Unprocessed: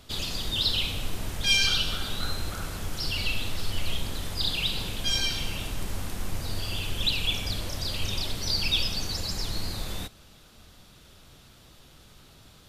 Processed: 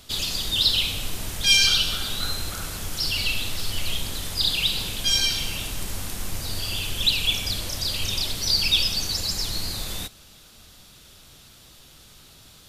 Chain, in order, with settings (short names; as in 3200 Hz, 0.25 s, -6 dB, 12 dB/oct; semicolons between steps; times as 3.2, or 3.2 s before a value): high shelf 2800 Hz +9 dB